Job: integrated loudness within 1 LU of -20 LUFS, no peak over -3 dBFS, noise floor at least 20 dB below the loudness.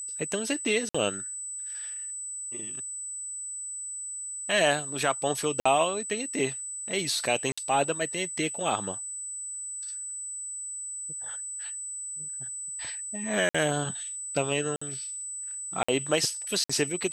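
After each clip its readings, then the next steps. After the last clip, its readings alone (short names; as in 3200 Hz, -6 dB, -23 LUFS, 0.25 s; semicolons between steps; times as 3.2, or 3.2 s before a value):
dropouts 7; longest dropout 55 ms; steady tone 8000 Hz; tone level -34 dBFS; loudness -29.5 LUFS; peak -9.5 dBFS; loudness target -20.0 LUFS
-> interpolate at 0.89/5.6/7.52/13.49/14.76/15.83/16.64, 55 ms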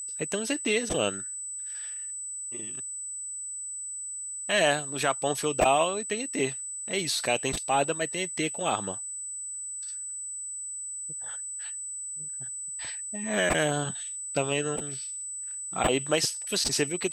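dropouts 0; steady tone 8000 Hz; tone level -34 dBFS
-> notch 8000 Hz, Q 30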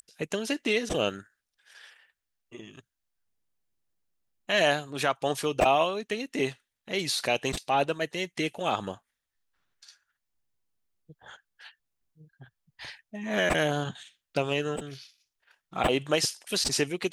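steady tone none; loudness -28.0 LUFS; peak -10.0 dBFS; loudness target -20.0 LUFS
-> gain +8 dB; limiter -3 dBFS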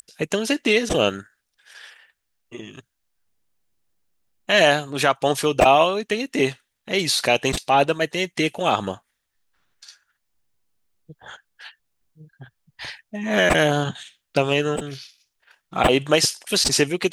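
loudness -20.0 LUFS; peak -3.0 dBFS; noise floor -77 dBFS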